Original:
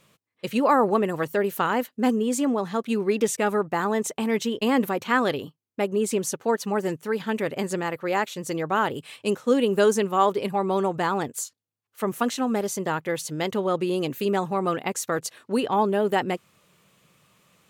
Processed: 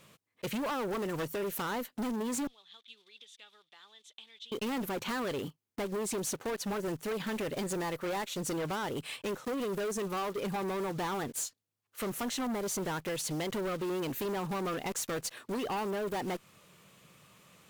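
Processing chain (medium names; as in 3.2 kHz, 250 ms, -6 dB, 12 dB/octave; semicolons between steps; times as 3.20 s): block-companded coder 5-bit; compression 6:1, threshold -27 dBFS, peak gain reduction 12 dB; 2.47–4.52 s: band-pass filter 3.5 kHz, Q 9.7; overload inside the chain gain 33 dB; Chebyshev shaper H 2 -31 dB, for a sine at -32.5 dBFS; trim +1.5 dB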